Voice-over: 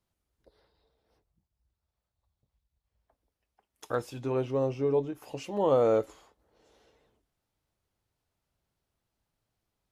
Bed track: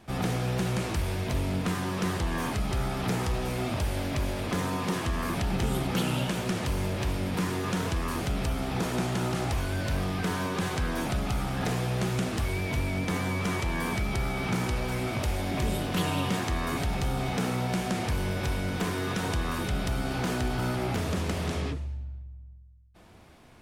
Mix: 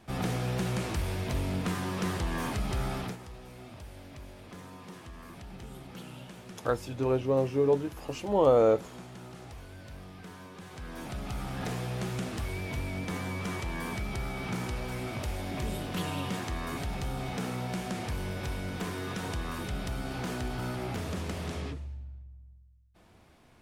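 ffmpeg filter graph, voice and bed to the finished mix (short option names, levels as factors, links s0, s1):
-filter_complex "[0:a]adelay=2750,volume=1.26[s0];[1:a]volume=2.82,afade=t=out:st=2.96:d=0.21:silence=0.188365,afade=t=in:st=10.66:d=0.85:silence=0.266073[s1];[s0][s1]amix=inputs=2:normalize=0"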